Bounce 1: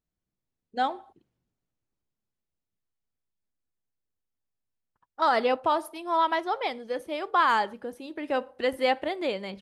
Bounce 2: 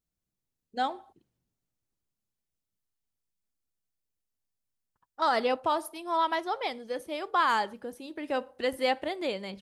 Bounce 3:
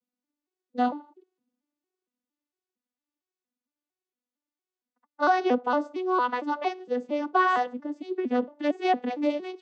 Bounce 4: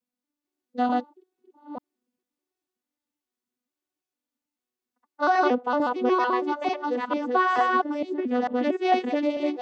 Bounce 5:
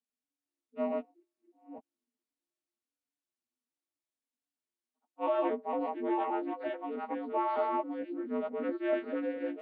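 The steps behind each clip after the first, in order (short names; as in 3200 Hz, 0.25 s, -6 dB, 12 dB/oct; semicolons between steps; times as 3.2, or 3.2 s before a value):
tone controls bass +2 dB, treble +6 dB; gain -3 dB
arpeggiated vocoder minor triad, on B3, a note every 0.229 s; gain +4.5 dB
reverse delay 0.446 s, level -1 dB
inharmonic rescaling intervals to 84%; gain -8 dB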